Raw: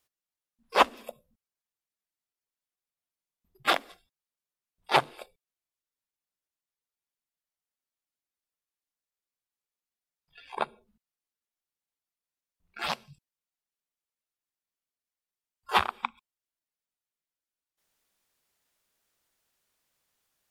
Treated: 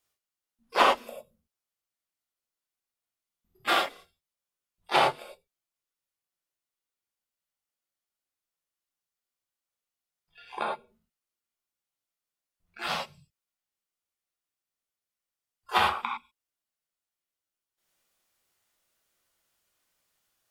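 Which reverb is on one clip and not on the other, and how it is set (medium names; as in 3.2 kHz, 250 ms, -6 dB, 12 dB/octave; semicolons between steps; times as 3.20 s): gated-style reverb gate 130 ms flat, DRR -3.5 dB; trim -3.5 dB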